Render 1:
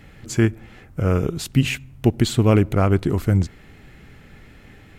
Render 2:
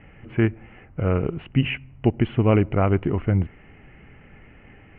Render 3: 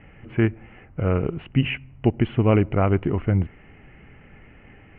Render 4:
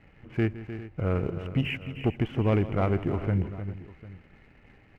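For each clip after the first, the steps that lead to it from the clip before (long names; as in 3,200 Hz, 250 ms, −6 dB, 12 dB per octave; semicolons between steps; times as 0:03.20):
Chebyshev low-pass with heavy ripple 3,000 Hz, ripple 3 dB
no processing that can be heard
leveller curve on the samples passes 1; multi-tap delay 162/305/404/749 ms −16.5/−12/−17/−19.5 dB; level −8.5 dB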